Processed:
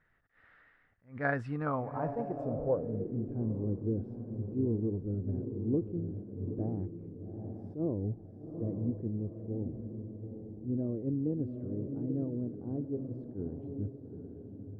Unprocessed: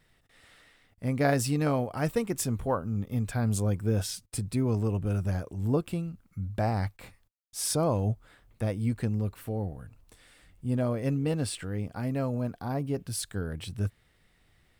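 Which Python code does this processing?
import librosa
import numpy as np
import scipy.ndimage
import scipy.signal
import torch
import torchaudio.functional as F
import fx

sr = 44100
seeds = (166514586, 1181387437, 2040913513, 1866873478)

y = fx.echo_diffused(x, sr, ms=840, feedback_pct=41, wet_db=-6.5)
y = fx.filter_sweep_lowpass(y, sr, from_hz=1600.0, to_hz=350.0, start_s=1.44, end_s=3.16, q=3.1)
y = fx.attack_slew(y, sr, db_per_s=200.0)
y = y * 10.0 ** (-8.5 / 20.0)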